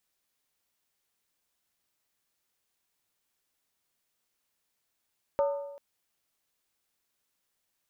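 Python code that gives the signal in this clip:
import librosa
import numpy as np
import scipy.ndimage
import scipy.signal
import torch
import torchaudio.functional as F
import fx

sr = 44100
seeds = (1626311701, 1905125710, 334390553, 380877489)

y = fx.strike_skin(sr, length_s=0.39, level_db=-21.5, hz=566.0, decay_s=0.98, tilt_db=8, modes=5)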